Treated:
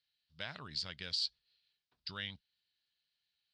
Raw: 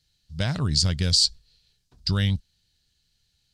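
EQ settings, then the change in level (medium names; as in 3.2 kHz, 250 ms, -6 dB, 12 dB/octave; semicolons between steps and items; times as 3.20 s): band-pass filter 6.9 kHz, Q 0.53; distance through air 410 m; +1.5 dB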